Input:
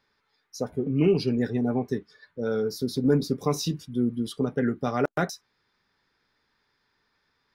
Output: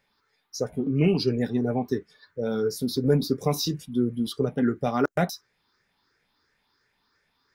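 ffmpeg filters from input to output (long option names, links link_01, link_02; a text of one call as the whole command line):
ffmpeg -i in.wav -af "afftfilt=real='re*pow(10,9/40*sin(2*PI*(0.51*log(max(b,1)*sr/1024/100)/log(2)-(2.9)*(pts-256)/sr)))':imag='im*pow(10,9/40*sin(2*PI*(0.51*log(max(b,1)*sr/1024/100)/log(2)-(2.9)*(pts-256)/sr)))':win_size=1024:overlap=0.75,highshelf=frequency=8700:gain=6" out.wav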